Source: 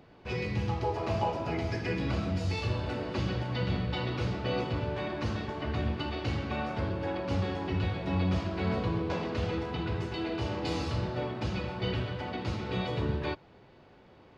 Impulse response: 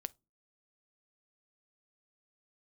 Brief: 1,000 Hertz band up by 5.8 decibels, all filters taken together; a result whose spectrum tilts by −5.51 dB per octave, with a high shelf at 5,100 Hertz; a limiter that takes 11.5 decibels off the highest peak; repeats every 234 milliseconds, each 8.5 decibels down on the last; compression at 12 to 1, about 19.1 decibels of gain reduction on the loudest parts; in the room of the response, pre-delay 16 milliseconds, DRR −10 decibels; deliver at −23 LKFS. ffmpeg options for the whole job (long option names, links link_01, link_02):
-filter_complex "[0:a]equalizer=frequency=1000:width_type=o:gain=7.5,highshelf=frequency=5100:gain=-5.5,acompressor=threshold=-40dB:ratio=12,alimiter=level_in=17dB:limit=-24dB:level=0:latency=1,volume=-17dB,aecho=1:1:234|468|702|936:0.376|0.143|0.0543|0.0206,asplit=2[link_01][link_02];[1:a]atrim=start_sample=2205,adelay=16[link_03];[link_02][link_03]afir=irnorm=-1:irlink=0,volume=12.5dB[link_04];[link_01][link_04]amix=inputs=2:normalize=0,volume=15.5dB"